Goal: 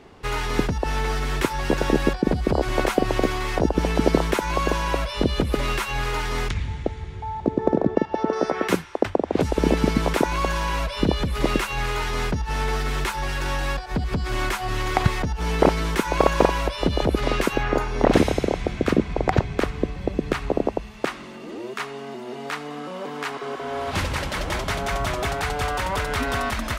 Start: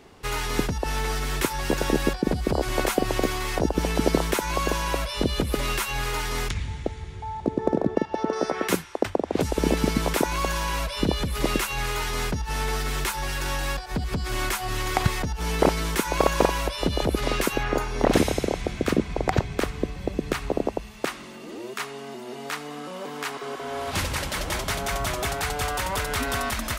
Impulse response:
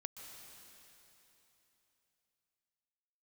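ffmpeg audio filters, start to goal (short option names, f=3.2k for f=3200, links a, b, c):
-af "lowpass=f=3.3k:p=1,volume=3dB"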